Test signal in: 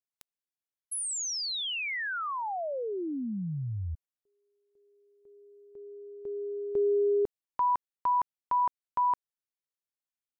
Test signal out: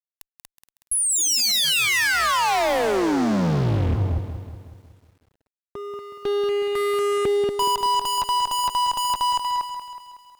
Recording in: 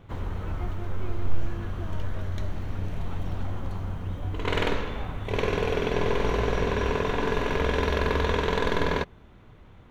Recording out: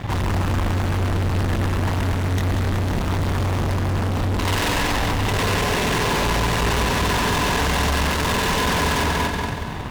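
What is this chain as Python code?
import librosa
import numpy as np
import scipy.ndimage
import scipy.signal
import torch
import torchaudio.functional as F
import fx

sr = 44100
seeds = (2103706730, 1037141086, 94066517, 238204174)

p1 = fx.highpass(x, sr, hz=64.0, slope=6)
p2 = p1 + 0.48 * np.pad(p1, (int(1.1 * sr / 1000.0), 0))[:len(p1)]
p3 = p2 + fx.echo_feedback(p2, sr, ms=237, feedback_pct=20, wet_db=-10, dry=0)
p4 = fx.fuzz(p3, sr, gain_db=46.0, gate_db=-53.0)
p5 = fx.echo_crushed(p4, sr, ms=185, feedback_pct=55, bits=8, wet_db=-9)
y = F.gain(torch.from_numpy(p5), -7.0).numpy()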